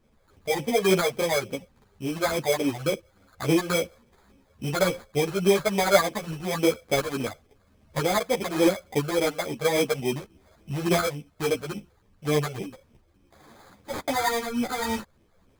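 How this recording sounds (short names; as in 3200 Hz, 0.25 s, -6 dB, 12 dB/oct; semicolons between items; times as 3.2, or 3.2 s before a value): phasing stages 8, 3.5 Hz, lowest notch 260–1800 Hz; tremolo saw up 1 Hz, depth 40%; aliases and images of a low sample rate 2800 Hz, jitter 0%; a shimmering, thickened sound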